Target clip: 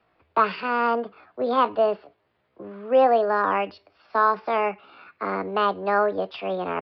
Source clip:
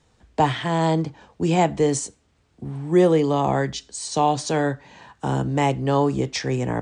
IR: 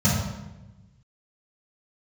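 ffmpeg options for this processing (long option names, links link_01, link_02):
-filter_complex "[0:a]asetrate=64194,aresample=44100,atempo=0.686977,acrossover=split=350 3100:gain=0.2 1 0.112[link_01][link_02][link_03];[link_01][link_02][link_03]amix=inputs=3:normalize=0,aresample=11025,aresample=44100"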